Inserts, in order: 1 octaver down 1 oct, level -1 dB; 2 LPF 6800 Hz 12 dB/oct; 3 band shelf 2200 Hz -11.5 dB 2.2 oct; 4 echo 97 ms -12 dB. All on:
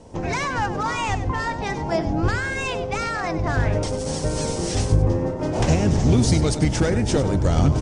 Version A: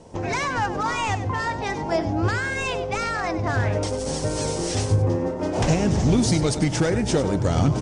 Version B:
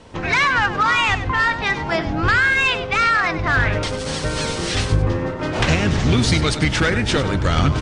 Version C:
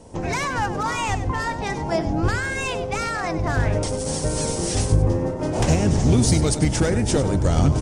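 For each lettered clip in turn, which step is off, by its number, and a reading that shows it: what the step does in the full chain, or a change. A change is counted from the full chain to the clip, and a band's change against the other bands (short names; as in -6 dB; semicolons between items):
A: 1, 125 Hz band -2.0 dB; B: 3, loudness change +4.0 LU; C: 2, 8 kHz band +4.0 dB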